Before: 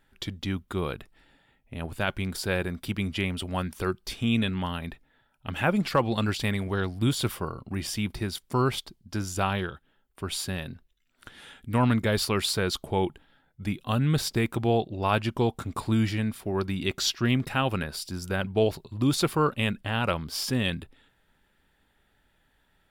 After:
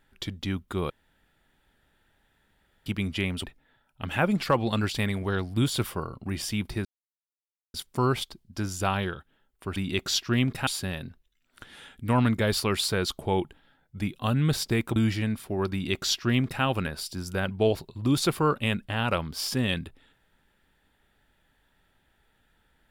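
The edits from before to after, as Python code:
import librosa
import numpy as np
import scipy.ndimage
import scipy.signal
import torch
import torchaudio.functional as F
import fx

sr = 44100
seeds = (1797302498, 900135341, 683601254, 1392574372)

y = fx.edit(x, sr, fx.room_tone_fill(start_s=0.9, length_s=1.96),
    fx.cut(start_s=3.44, length_s=1.45),
    fx.insert_silence(at_s=8.3, length_s=0.89),
    fx.cut(start_s=14.61, length_s=1.31),
    fx.duplicate(start_s=16.68, length_s=0.91, to_s=10.32), tone=tone)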